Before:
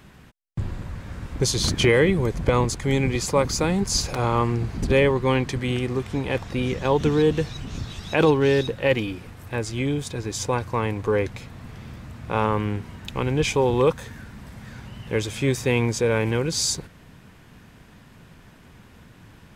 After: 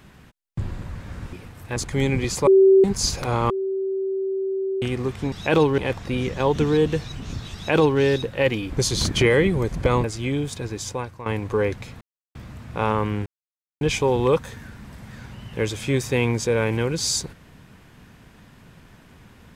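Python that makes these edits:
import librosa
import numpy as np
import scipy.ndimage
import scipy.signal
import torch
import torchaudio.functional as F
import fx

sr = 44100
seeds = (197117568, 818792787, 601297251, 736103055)

y = fx.edit(x, sr, fx.swap(start_s=1.33, length_s=1.34, other_s=9.15, other_length_s=0.43),
    fx.bleep(start_s=3.38, length_s=0.37, hz=385.0, db=-9.5),
    fx.bleep(start_s=4.41, length_s=1.32, hz=385.0, db=-22.0),
    fx.duplicate(start_s=7.99, length_s=0.46, to_s=6.23),
    fx.fade_out_to(start_s=10.19, length_s=0.61, floor_db=-14.0),
    fx.silence(start_s=11.55, length_s=0.34),
    fx.silence(start_s=12.8, length_s=0.55), tone=tone)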